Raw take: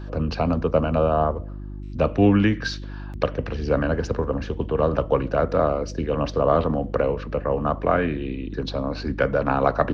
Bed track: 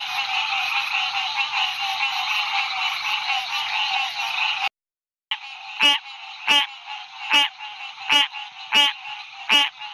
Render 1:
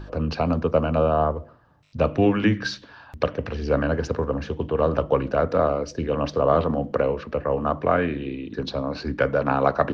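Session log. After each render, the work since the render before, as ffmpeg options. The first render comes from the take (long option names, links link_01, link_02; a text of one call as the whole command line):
ffmpeg -i in.wav -af "bandreject=frequency=50:width_type=h:width=4,bandreject=frequency=100:width_type=h:width=4,bandreject=frequency=150:width_type=h:width=4,bandreject=frequency=200:width_type=h:width=4,bandreject=frequency=250:width_type=h:width=4,bandreject=frequency=300:width_type=h:width=4,bandreject=frequency=350:width_type=h:width=4" out.wav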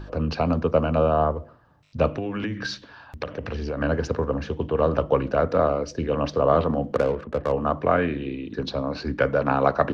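ffmpeg -i in.wav -filter_complex "[0:a]asplit=3[link_01][link_02][link_03];[link_01]afade=type=out:start_time=2.14:duration=0.02[link_04];[link_02]acompressor=threshold=-24dB:ratio=12:attack=3.2:release=140:knee=1:detection=peak,afade=type=in:start_time=2.14:duration=0.02,afade=type=out:start_time=3.8:duration=0.02[link_05];[link_03]afade=type=in:start_time=3.8:duration=0.02[link_06];[link_04][link_05][link_06]amix=inputs=3:normalize=0,asplit=3[link_07][link_08][link_09];[link_07]afade=type=out:start_time=6.94:duration=0.02[link_10];[link_08]adynamicsmooth=sensitivity=3:basefreq=680,afade=type=in:start_time=6.94:duration=0.02,afade=type=out:start_time=7.51:duration=0.02[link_11];[link_09]afade=type=in:start_time=7.51:duration=0.02[link_12];[link_10][link_11][link_12]amix=inputs=3:normalize=0" out.wav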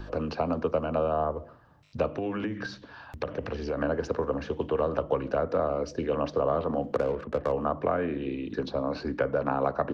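ffmpeg -i in.wav -filter_complex "[0:a]acrossover=split=250|1300[link_01][link_02][link_03];[link_01]acompressor=threshold=-39dB:ratio=4[link_04];[link_02]acompressor=threshold=-24dB:ratio=4[link_05];[link_03]acompressor=threshold=-44dB:ratio=4[link_06];[link_04][link_05][link_06]amix=inputs=3:normalize=0" out.wav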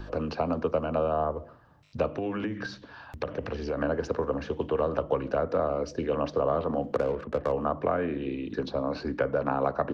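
ffmpeg -i in.wav -af anull out.wav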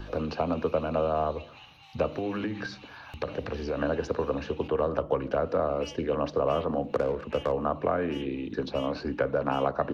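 ffmpeg -i in.wav -i bed.wav -filter_complex "[1:a]volume=-29dB[link_01];[0:a][link_01]amix=inputs=2:normalize=0" out.wav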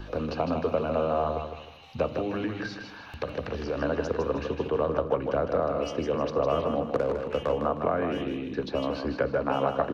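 ffmpeg -i in.wav -af "aecho=1:1:156|312|468|624:0.473|0.161|0.0547|0.0186" out.wav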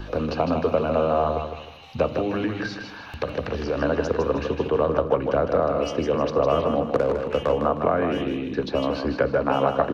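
ffmpeg -i in.wav -af "volume=5dB" out.wav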